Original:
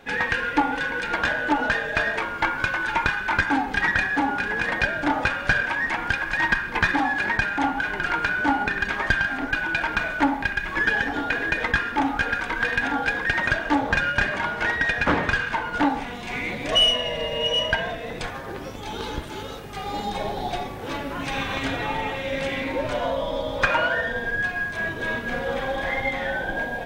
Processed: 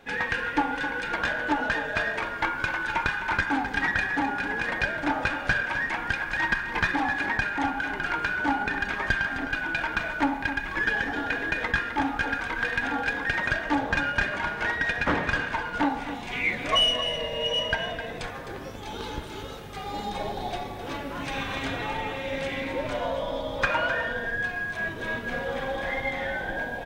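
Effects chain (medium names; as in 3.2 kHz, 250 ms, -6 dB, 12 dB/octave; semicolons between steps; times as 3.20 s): 16.31–16.80 s: peaking EQ 3.4 kHz -> 940 Hz +12 dB 0.33 oct; delay 259 ms -10.5 dB; trim -4 dB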